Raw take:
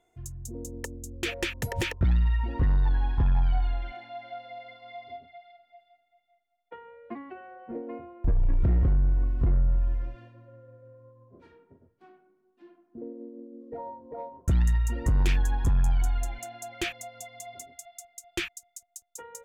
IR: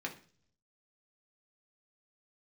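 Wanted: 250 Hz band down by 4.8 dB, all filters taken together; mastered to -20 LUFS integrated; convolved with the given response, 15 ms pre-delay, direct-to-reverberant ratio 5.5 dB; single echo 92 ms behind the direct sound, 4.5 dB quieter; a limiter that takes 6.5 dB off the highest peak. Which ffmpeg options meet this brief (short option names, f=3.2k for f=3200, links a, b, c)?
-filter_complex "[0:a]equalizer=f=250:t=o:g=-8,alimiter=limit=-24dB:level=0:latency=1,aecho=1:1:92:0.596,asplit=2[a][b];[1:a]atrim=start_sample=2205,adelay=15[c];[b][c]afir=irnorm=-1:irlink=0,volume=-7dB[d];[a][d]amix=inputs=2:normalize=0,volume=13dB"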